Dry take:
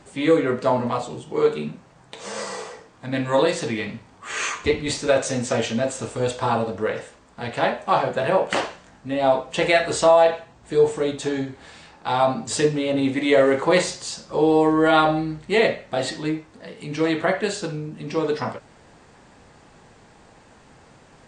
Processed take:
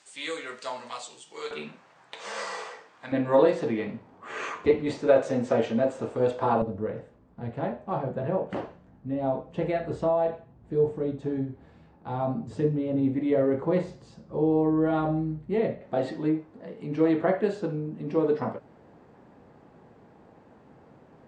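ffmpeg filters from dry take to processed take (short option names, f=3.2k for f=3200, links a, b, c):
-af "asetnsamples=n=441:p=0,asendcmd='1.51 bandpass f 1700;3.12 bandpass f 410;6.62 bandpass f 120;15.81 bandpass f 300',bandpass=f=6.6k:t=q:w=0.56:csg=0"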